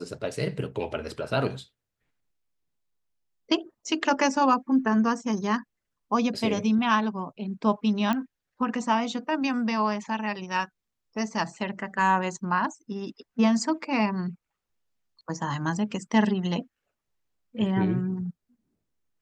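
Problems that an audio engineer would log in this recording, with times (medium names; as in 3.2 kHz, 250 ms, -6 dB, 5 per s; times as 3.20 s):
8.13 s: pop -15 dBFS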